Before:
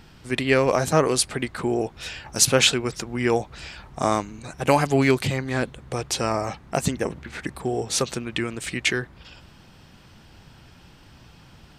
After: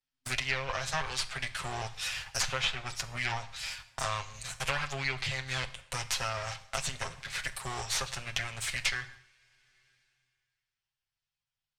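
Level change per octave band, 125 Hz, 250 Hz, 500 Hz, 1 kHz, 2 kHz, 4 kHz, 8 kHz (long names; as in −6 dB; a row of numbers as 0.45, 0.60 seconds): −12.0, −24.0, −19.0, −10.0, −5.0, −7.0, −10.5 decibels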